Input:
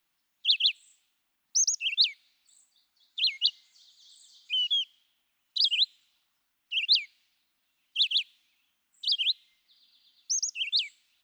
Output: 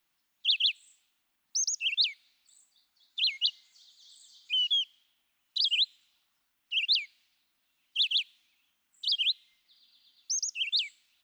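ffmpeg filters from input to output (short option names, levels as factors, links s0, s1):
-filter_complex "[0:a]acrossover=split=3500[s0][s1];[s1]acompressor=threshold=0.0398:ratio=4:attack=1:release=60[s2];[s0][s2]amix=inputs=2:normalize=0"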